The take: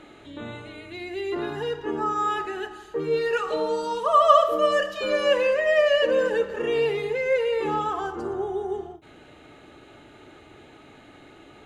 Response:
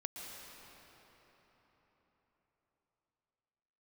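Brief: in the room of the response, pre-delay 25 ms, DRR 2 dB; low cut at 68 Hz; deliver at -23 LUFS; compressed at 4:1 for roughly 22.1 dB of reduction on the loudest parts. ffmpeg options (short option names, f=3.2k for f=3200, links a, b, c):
-filter_complex "[0:a]highpass=68,acompressor=threshold=-39dB:ratio=4,asplit=2[a][b];[1:a]atrim=start_sample=2205,adelay=25[c];[b][c]afir=irnorm=-1:irlink=0,volume=-1.5dB[d];[a][d]amix=inputs=2:normalize=0,volume=15.5dB"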